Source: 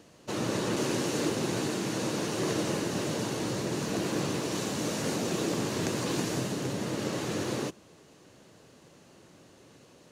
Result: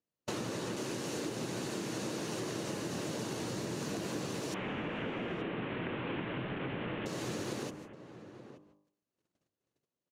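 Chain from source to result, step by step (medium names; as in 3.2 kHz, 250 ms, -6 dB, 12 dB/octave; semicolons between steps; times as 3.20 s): 4.54–7.06 s: one-bit delta coder 16 kbps, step -28 dBFS; gate -50 dBFS, range -42 dB; de-hum 50.32 Hz, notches 24; compression 12:1, threshold -39 dBFS, peak gain reduction 14.5 dB; echo from a far wall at 150 m, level -12 dB; trim +4.5 dB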